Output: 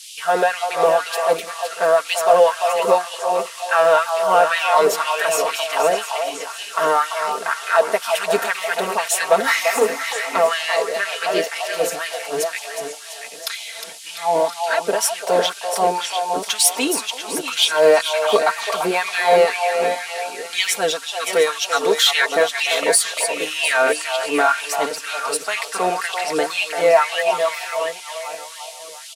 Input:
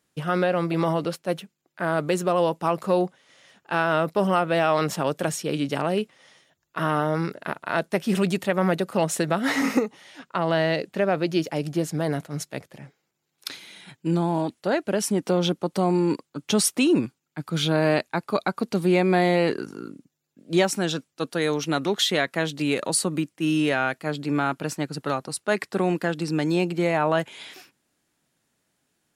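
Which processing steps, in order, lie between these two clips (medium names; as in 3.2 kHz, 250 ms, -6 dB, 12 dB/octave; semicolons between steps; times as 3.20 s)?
backward echo that repeats 350 ms, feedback 54%, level -8 dB; treble shelf 11 kHz +10 dB; comb 4.4 ms, depth 78%; in parallel at -6.5 dB: overload inside the chain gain 20.5 dB; on the sum: band noise 2.8–11 kHz -40 dBFS; LFO high-pass sine 2 Hz 440–2800 Hz; short-mantissa float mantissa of 6-bit; on a send: repeats whose band climbs or falls 341 ms, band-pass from 830 Hz, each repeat 1.4 oct, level -4.5 dB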